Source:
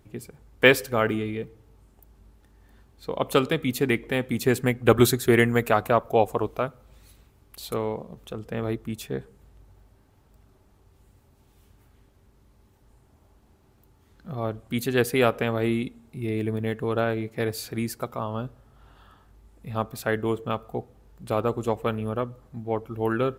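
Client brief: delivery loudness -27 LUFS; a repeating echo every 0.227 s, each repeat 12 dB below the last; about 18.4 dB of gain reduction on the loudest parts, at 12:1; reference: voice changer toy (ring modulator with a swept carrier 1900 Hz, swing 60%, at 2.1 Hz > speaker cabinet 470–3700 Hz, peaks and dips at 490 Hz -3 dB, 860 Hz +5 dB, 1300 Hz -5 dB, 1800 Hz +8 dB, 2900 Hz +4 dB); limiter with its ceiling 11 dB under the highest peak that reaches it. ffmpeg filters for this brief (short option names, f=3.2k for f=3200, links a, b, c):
-af "acompressor=threshold=-30dB:ratio=12,alimiter=level_in=4.5dB:limit=-24dB:level=0:latency=1,volume=-4.5dB,aecho=1:1:227|454|681:0.251|0.0628|0.0157,aeval=exprs='val(0)*sin(2*PI*1900*n/s+1900*0.6/2.1*sin(2*PI*2.1*n/s))':c=same,highpass=470,equalizer=f=490:t=q:w=4:g=-3,equalizer=f=860:t=q:w=4:g=5,equalizer=f=1.3k:t=q:w=4:g=-5,equalizer=f=1.8k:t=q:w=4:g=8,equalizer=f=2.9k:t=q:w=4:g=4,lowpass=f=3.7k:w=0.5412,lowpass=f=3.7k:w=1.3066,volume=11dB"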